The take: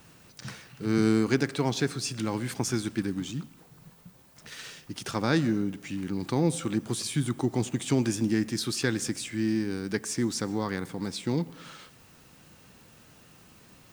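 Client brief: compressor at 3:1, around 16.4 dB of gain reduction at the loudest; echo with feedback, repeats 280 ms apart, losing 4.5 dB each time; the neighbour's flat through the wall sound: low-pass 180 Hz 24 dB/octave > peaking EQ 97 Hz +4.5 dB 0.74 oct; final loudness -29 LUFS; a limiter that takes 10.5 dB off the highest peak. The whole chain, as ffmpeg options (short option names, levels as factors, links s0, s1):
-af "acompressor=threshold=0.00794:ratio=3,alimiter=level_in=3.55:limit=0.0631:level=0:latency=1,volume=0.282,lowpass=f=180:w=0.5412,lowpass=f=180:w=1.3066,equalizer=f=97:t=o:w=0.74:g=4.5,aecho=1:1:280|560|840|1120|1400|1680|1960|2240|2520:0.596|0.357|0.214|0.129|0.0772|0.0463|0.0278|0.0167|0.01,volume=11.2"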